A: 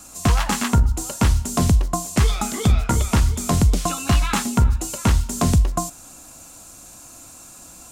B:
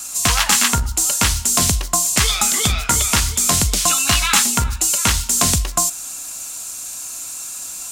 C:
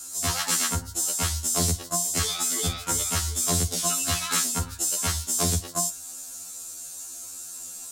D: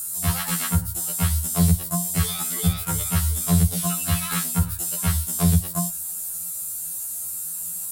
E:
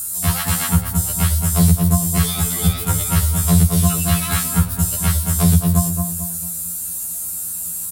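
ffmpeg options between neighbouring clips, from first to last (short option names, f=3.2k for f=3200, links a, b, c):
-af "tiltshelf=f=1.1k:g=-9.5,acontrast=41,volume=-1dB"
-af "equalizer=f=400:t=o:w=0.67:g=6,equalizer=f=1k:t=o:w=0.67:g=-4,equalizer=f=2.5k:t=o:w=0.67:g=-7,afftfilt=real='re*2*eq(mod(b,4),0)':imag='im*2*eq(mod(b,4),0)':win_size=2048:overlap=0.75,volume=-6dB"
-filter_complex "[0:a]aexciter=amount=4.1:drive=9.5:freq=8.8k,lowshelf=f=220:t=q:w=3:g=7,acrossover=split=4100[a][b];[b]acompressor=threshold=-26dB:ratio=4:attack=1:release=60[c];[a][c]amix=inputs=2:normalize=0"
-filter_complex "[0:a]aeval=exprs='val(0)+0.00158*(sin(2*PI*60*n/s)+sin(2*PI*2*60*n/s)/2+sin(2*PI*3*60*n/s)/3+sin(2*PI*4*60*n/s)/4+sin(2*PI*5*60*n/s)/5)':c=same,asplit=2[a][b];[b]adelay=221,lowpass=f=1.1k:p=1,volume=-3dB,asplit=2[c][d];[d]adelay=221,lowpass=f=1.1k:p=1,volume=0.44,asplit=2[e][f];[f]adelay=221,lowpass=f=1.1k:p=1,volume=0.44,asplit=2[g][h];[h]adelay=221,lowpass=f=1.1k:p=1,volume=0.44,asplit=2[i][j];[j]adelay=221,lowpass=f=1.1k:p=1,volume=0.44,asplit=2[k][l];[l]adelay=221,lowpass=f=1.1k:p=1,volume=0.44[m];[c][e][g][i][k][m]amix=inputs=6:normalize=0[n];[a][n]amix=inputs=2:normalize=0,volume=4.5dB"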